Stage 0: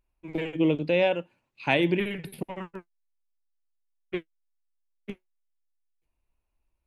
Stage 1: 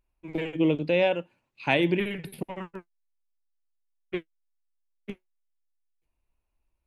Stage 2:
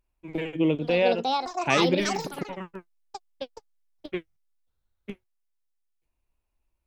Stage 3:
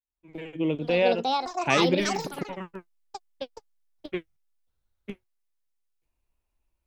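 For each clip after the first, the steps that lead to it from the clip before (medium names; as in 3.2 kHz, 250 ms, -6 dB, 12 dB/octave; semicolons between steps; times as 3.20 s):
no audible change
ever faster or slower copies 652 ms, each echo +7 st, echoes 2
fade-in on the opening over 0.99 s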